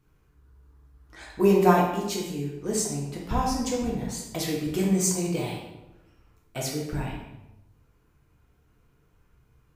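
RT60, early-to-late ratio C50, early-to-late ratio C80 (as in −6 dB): 1.0 s, 3.0 dB, 5.5 dB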